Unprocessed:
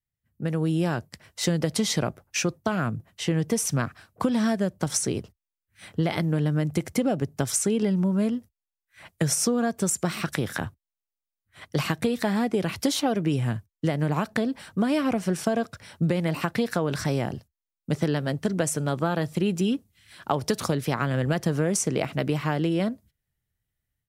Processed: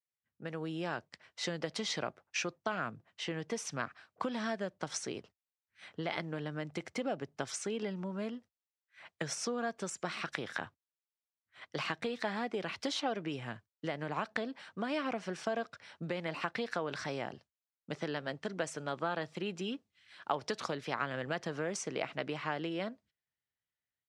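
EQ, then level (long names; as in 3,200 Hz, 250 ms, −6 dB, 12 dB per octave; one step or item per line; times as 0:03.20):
high-pass filter 860 Hz 6 dB per octave
high-frequency loss of the air 130 metres
−3.5 dB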